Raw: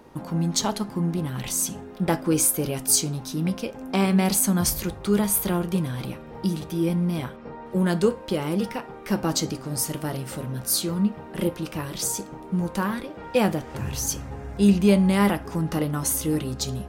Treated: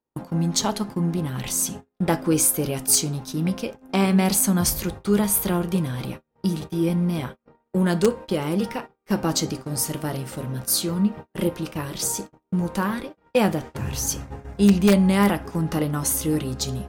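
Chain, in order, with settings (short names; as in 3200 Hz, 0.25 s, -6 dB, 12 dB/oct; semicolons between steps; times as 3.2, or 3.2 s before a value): gate -34 dBFS, range -39 dB; in parallel at -3.5 dB: wrapped overs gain 8.5 dB; on the sum: gain -3 dB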